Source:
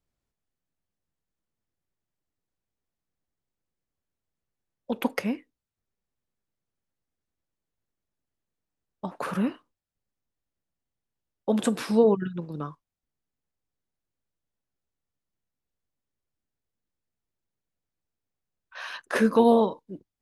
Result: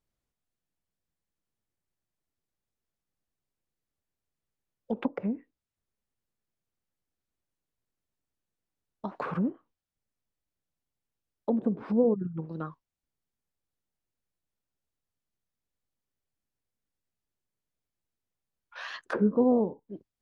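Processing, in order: wow and flutter 130 cents; low-pass that closes with the level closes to 480 Hz, closed at -23.5 dBFS; trim -2 dB

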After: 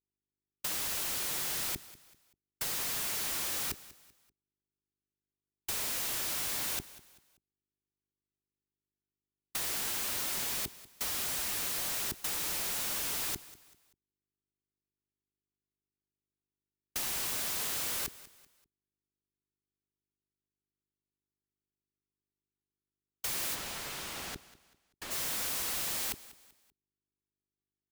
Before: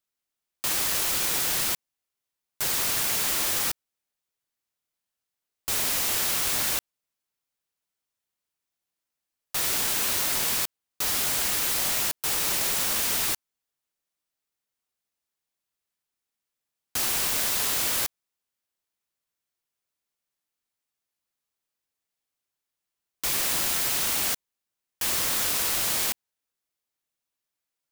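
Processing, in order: waveshaping leveller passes 1; mains buzz 50 Hz, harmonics 8, -50 dBFS -1 dB/octave; hard clipper -29.5 dBFS, distortion -6 dB; gate -32 dBFS, range -58 dB; compressor with a negative ratio -41 dBFS, ratio -0.5; waveshaping leveller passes 2; 23.54–25.10 s: low-pass 4 kHz -> 2.3 kHz 6 dB/octave; feedback delay 193 ms, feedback 37%, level -18 dB; trim +4 dB

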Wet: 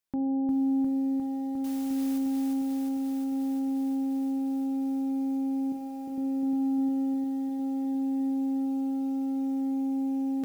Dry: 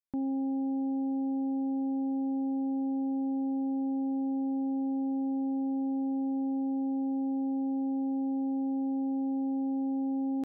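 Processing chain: 5.72–6.18 s: bass shelf 440 Hz -9 dB; de-hum 46.25 Hz, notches 31; in parallel at +2 dB: peak limiter -36 dBFS, peak gain reduction 9 dB; 1.64–2.18 s: on the sum: word length cut 8-bit, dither triangular; reverberation RT60 3.0 s, pre-delay 73 ms, DRR 15 dB; bit-crushed delay 354 ms, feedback 80%, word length 10-bit, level -3 dB

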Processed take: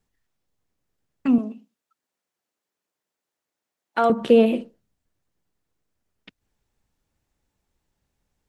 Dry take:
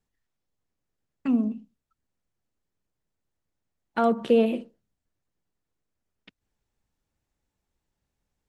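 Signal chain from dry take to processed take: 1.38–4.10 s: Bessel high-pass 440 Hz, order 2; trim +5 dB

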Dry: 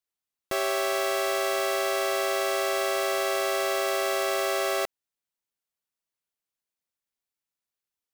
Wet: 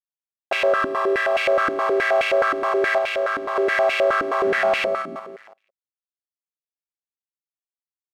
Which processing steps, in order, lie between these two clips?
4.44–4.84 s: octave divider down 1 oct, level +3 dB; hum notches 50/100/150/200/250/300/350/400/450/500 Hz; feedback delay 170 ms, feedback 52%, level -15 dB; bit crusher 11-bit; waveshaping leveller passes 5; 0.72–1.35 s: comb of notches 730 Hz; 2.98–3.56 s: hard clipper -22 dBFS, distortion -17 dB; step-sequenced band-pass 9.5 Hz 290–2500 Hz; trim +8 dB

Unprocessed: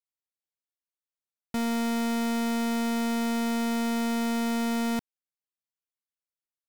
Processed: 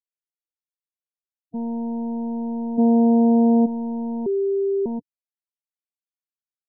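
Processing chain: 2.78–3.66 s: peaking EQ 370 Hz +15 dB 2.3 oct; loudest bins only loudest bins 8; 4.26–4.86 s: bleep 394 Hz -20 dBFS; trim +1.5 dB

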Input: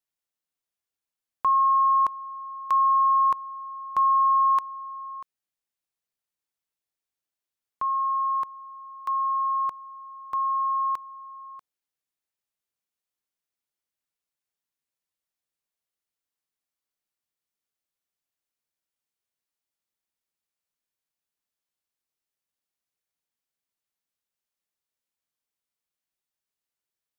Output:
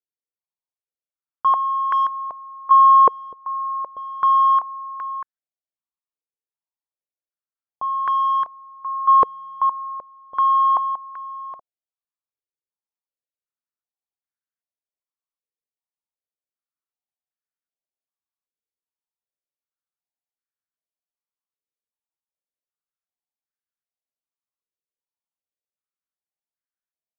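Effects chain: waveshaping leveller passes 3; compression 6:1, threshold -21 dBFS, peak gain reduction 3.5 dB; gate -24 dBFS, range -7 dB; step-sequenced low-pass 2.6 Hz 470–1600 Hz

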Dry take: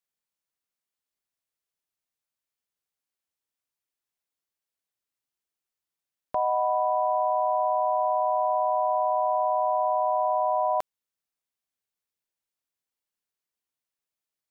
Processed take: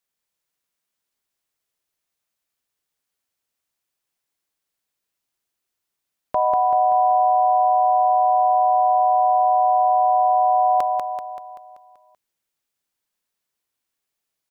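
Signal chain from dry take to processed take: feedback delay 192 ms, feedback 53%, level -4 dB; trim +6 dB

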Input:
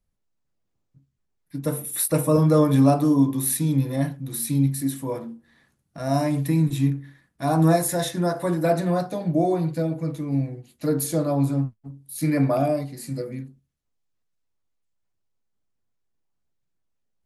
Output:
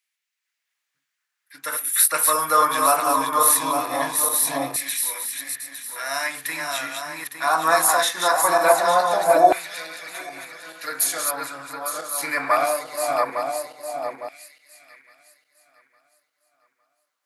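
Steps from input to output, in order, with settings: backward echo that repeats 429 ms, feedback 55%, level -4 dB; LFO high-pass saw down 0.21 Hz 810–2200 Hz; trim +7.5 dB

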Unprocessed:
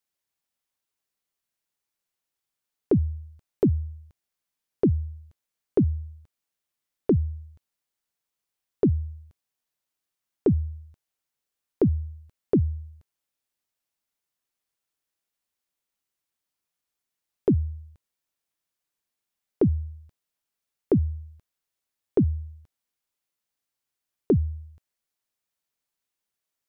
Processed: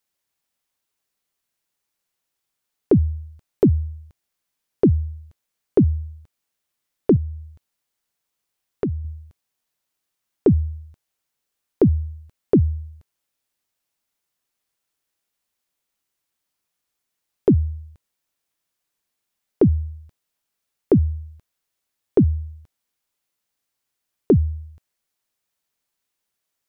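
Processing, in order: 7.16–9.05 s: compression 2:1, threshold -33 dBFS, peak gain reduction 9 dB; trim +5.5 dB

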